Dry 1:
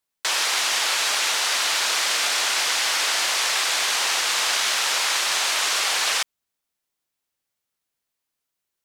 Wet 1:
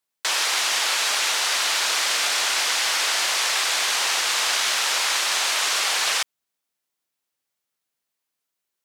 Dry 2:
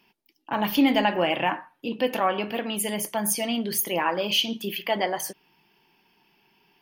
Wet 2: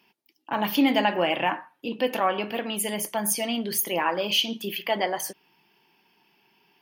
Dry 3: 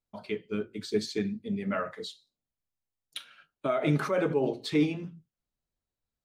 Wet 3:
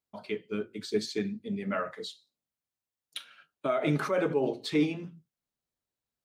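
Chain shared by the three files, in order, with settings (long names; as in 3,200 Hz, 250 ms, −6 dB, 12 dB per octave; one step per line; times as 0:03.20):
high-pass filter 150 Hz 6 dB per octave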